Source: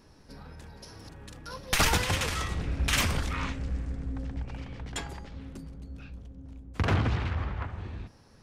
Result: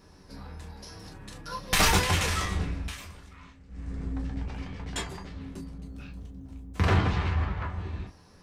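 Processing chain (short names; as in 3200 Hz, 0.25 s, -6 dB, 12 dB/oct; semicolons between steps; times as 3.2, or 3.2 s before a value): 2.61–4.02 dip -20.5 dB, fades 0.34 s; 5.84–6.86 high shelf 11000 Hz +10 dB; reverb, pre-delay 3 ms, DRR 0.5 dB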